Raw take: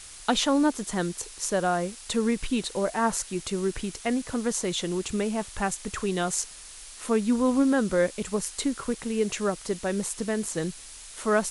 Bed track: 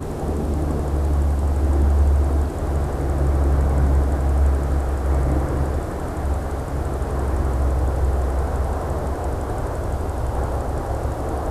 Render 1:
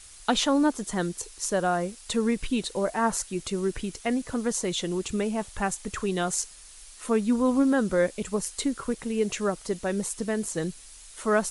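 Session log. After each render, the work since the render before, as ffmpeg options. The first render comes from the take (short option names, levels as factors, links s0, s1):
-af "afftdn=nr=6:nf=-45"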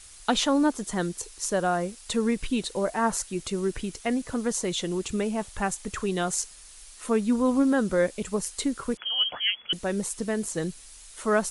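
-filter_complex "[0:a]asettb=1/sr,asplit=3[s0][s1][s2];[s0]atrim=end=8.974[s3];[s1]atrim=start=8.97:end=9.73,asetpts=PTS-STARTPTS,afade=t=in:d=0.004:c=qsin,afade=t=out:st=0.756:d=0.004:c=qsin,lowpass=f=2900:t=q:w=0.5098,lowpass=f=2900:t=q:w=0.6013,lowpass=f=2900:t=q:w=0.9,lowpass=f=2900:t=q:w=2.563,afreqshift=-3400[s4];[s2]atrim=start=9.726[s5];[s3][s4]acrossfade=d=0.004:c1=hsin:c2=qsin[s6];[s6][s5]acrossfade=d=0.004:c1=qsin:c2=hsin"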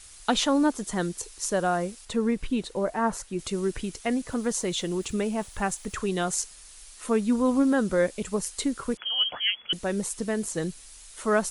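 -filter_complex "[0:a]asettb=1/sr,asplit=3[s0][s1][s2];[s0]atrim=end=2.054[s3];[s1]atrim=start=2.05:end=3.39,asetpts=PTS-STARTPTS,afade=t=in:d=0.004:c=qsin,afade=t=out:st=1.336:d=0.004:c=qsin,highshelf=f=2700:g=-8.5[s4];[s2]atrim=start=3.386[s5];[s3][s4]acrossfade=d=0.004:c1=hsin:c2=qsin[s6];[s6][s5]acrossfade=d=0.004:c1=qsin:c2=hsin,asettb=1/sr,asplit=3[s7][s8][s9];[s7]atrim=end=4.324[s10];[s8]atrim=start=4.32:end=5.96,asetpts=PTS-STARTPTS,afade=t=in:d=0.004:c=qsin,afade=t=out:st=1.636:d=0.004:c=qsin,aeval=exprs='val(0)*gte(abs(val(0)),0.00224)':c=same[s11];[s9]atrim=start=5.956[s12];[s10][s11]acrossfade=d=0.004:c1=hsin:c2=qsin[s13];[s13][s12]acrossfade=d=0.004:c1=qsin:c2=hsin"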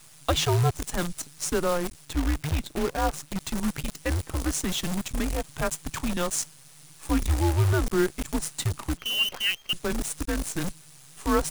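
-af "afreqshift=-170,acrusher=bits=6:dc=4:mix=0:aa=0.000001"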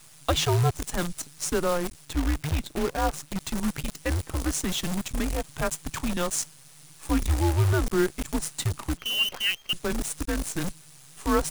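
-af anull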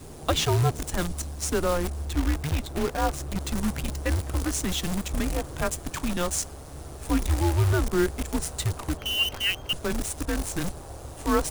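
-filter_complex "[1:a]volume=0.15[s0];[0:a][s0]amix=inputs=2:normalize=0"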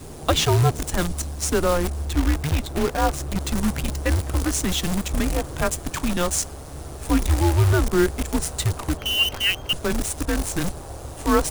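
-af "volume=1.68"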